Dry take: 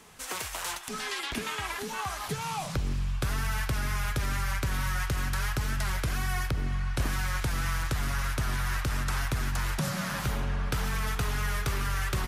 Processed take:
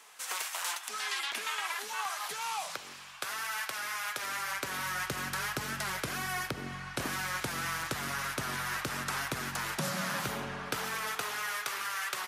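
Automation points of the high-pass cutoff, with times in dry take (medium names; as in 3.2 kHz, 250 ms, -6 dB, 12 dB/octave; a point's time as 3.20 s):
4.05 s 760 Hz
5.10 s 220 Hz
10.50 s 220 Hz
11.64 s 760 Hz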